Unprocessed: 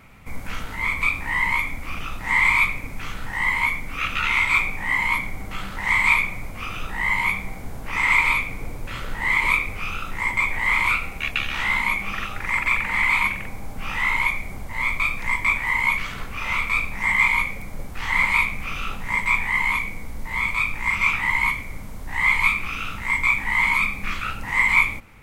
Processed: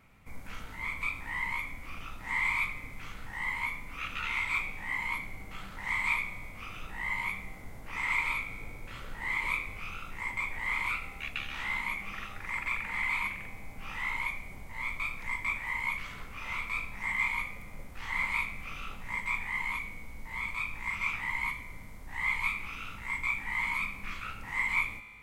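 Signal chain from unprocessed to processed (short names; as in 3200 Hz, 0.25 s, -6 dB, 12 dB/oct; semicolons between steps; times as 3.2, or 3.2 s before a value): resonator 53 Hz, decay 2 s, harmonics all, mix 60%; gain -5 dB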